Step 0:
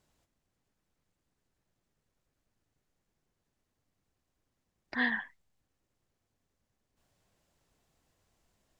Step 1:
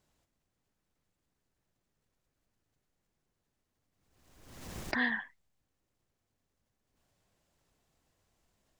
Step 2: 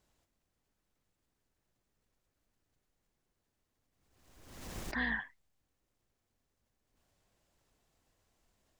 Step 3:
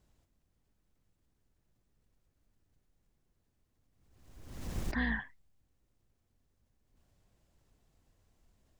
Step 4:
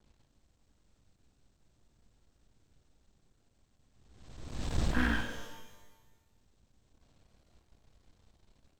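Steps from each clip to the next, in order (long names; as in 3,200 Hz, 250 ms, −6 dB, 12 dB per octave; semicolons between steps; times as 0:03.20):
background raised ahead of every attack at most 48 dB per second; level −1.5 dB
sub-octave generator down 2 octaves, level −5 dB; parametric band 150 Hz −3 dB 0.77 octaves; brickwall limiter −25 dBFS, peak gain reduction 9.5 dB
low-shelf EQ 280 Hz +11 dB; level −1.5 dB
hearing-aid frequency compression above 1,300 Hz 1.5 to 1; half-wave rectification; reverb with rising layers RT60 1.1 s, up +12 semitones, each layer −8 dB, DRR 6 dB; level +7.5 dB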